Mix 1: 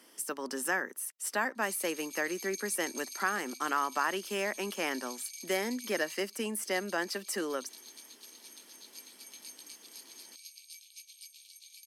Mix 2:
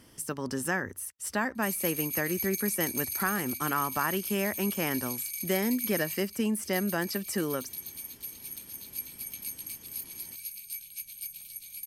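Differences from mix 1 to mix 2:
speech: remove Bessel high-pass 380 Hz, order 8; background: remove Butterworth band-pass 4.6 kHz, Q 1.1

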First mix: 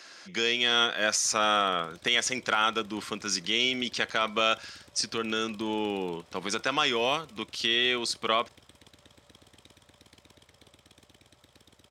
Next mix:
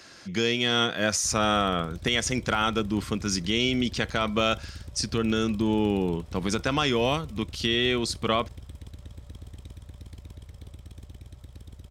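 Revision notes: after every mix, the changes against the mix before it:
master: remove frequency weighting A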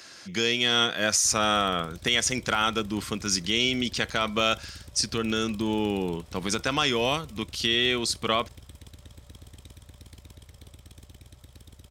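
master: add tilt EQ +1.5 dB/octave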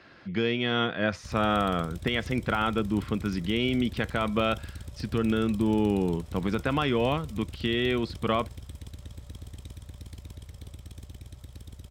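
speech: add distance through air 430 m; master: add bass shelf 280 Hz +6.5 dB

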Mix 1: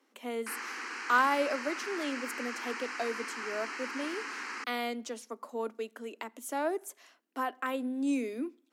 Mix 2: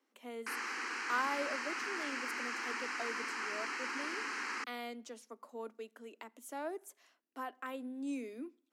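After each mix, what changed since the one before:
speech -9.0 dB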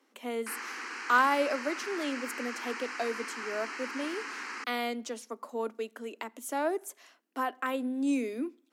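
speech +10.5 dB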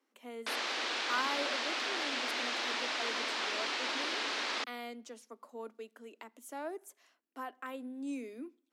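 speech -10.5 dB; background: remove static phaser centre 1.5 kHz, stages 4

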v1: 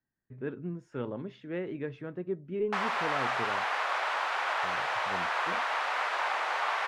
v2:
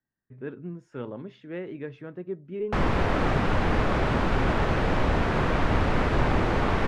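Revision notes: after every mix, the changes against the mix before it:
background: remove high-pass 750 Hz 24 dB/octave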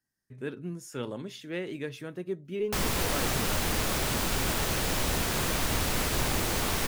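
background -7.0 dB; master: remove low-pass 1.7 kHz 12 dB/octave

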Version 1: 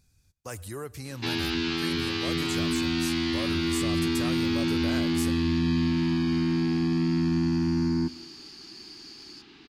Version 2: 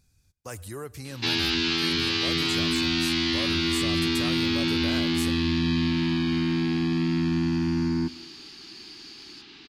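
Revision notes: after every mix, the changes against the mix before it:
first sound: add peaking EQ 4.5 kHz +7.5 dB 2.5 oct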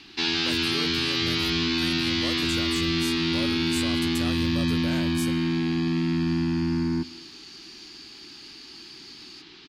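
first sound: entry -1.05 s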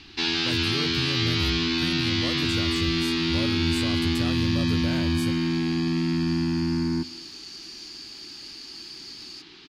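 speech: add tone controls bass +11 dB, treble -5 dB; second sound +5.0 dB

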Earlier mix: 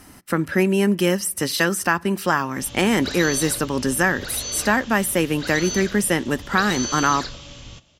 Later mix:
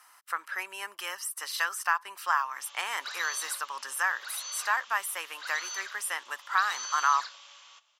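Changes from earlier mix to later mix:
speech: send off; master: add ladder high-pass 920 Hz, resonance 50%

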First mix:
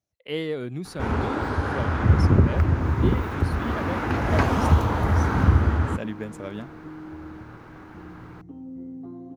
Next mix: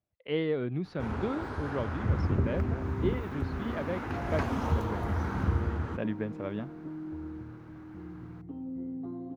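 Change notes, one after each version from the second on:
speech: add distance through air 300 m; first sound -10.5 dB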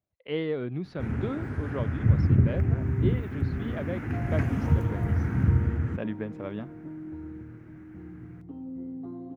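first sound: add graphic EQ 125/250/500/1000/2000/4000 Hz +11/+4/-3/-10/+7/-12 dB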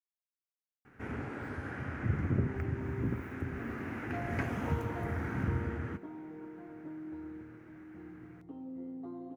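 speech: muted; master: add tone controls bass -12 dB, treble -1 dB

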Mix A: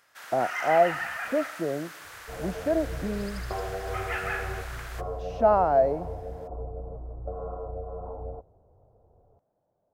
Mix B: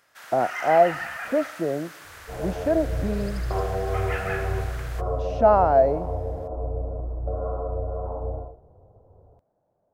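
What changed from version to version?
speech +3.5 dB; reverb: on, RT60 0.50 s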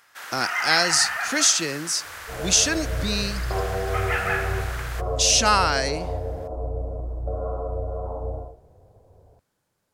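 speech: remove resonant low-pass 670 Hz, resonance Q 4.8; first sound +6.5 dB

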